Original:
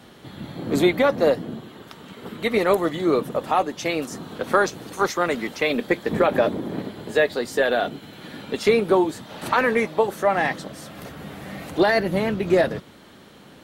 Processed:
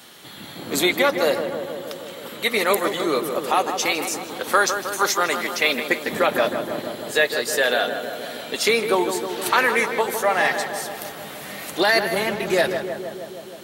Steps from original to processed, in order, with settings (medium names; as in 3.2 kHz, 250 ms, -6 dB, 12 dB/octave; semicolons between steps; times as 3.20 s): tilt EQ +3.5 dB/octave; on a send: filtered feedback delay 157 ms, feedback 76%, low-pass 1.8 kHz, level -7 dB; on the sum: trim +1 dB